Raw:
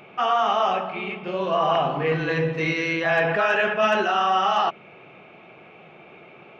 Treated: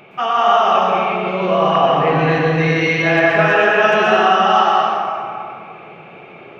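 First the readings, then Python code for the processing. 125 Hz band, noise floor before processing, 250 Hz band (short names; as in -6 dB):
+10.0 dB, -48 dBFS, +9.0 dB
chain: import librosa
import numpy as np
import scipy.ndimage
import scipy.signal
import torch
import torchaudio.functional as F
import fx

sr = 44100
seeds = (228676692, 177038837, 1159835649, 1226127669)

y = fx.rev_plate(x, sr, seeds[0], rt60_s=2.3, hf_ratio=0.55, predelay_ms=105, drr_db=-3.5)
y = F.gain(torch.from_numpy(y), 3.0).numpy()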